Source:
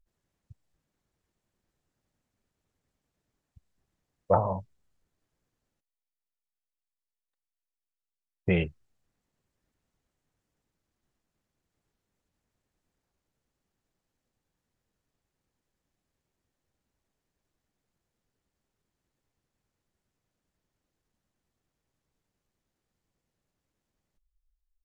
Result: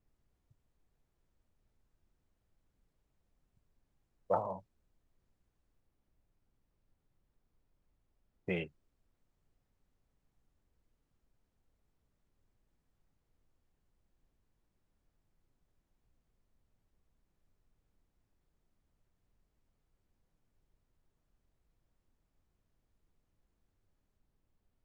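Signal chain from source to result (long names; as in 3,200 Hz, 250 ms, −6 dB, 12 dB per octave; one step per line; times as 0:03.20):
in parallel at −11 dB: comparator with hysteresis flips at −21 dBFS
on the sum: Bessel high-pass filter 220 Hz, order 2
background noise brown −67 dBFS
level −8 dB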